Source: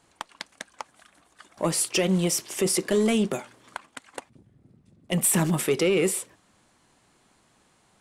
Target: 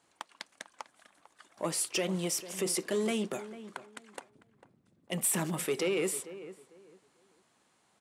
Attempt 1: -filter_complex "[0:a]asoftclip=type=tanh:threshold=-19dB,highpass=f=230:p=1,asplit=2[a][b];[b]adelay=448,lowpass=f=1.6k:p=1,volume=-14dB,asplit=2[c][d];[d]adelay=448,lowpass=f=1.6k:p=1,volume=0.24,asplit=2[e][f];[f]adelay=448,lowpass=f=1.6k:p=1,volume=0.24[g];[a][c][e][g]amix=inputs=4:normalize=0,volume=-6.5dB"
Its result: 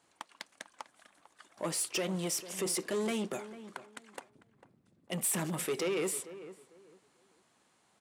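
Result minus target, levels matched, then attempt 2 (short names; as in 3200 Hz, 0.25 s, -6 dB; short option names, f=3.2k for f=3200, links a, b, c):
soft clip: distortion +16 dB
-filter_complex "[0:a]asoftclip=type=tanh:threshold=-9dB,highpass=f=230:p=1,asplit=2[a][b];[b]adelay=448,lowpass=f=1.6k:p=1,volume=-14dB,asplit=2[c][d];[d]adelay=448,lowpass=f=1.6k:p=1,volume=0.24,asplit=2[e][f];[f]adelay=448,lowpass=f=1.6k:p=1,volume=0.24[g];[a][c][e][g]amix=inputs=4:normalize=0,volume=-6.5dB"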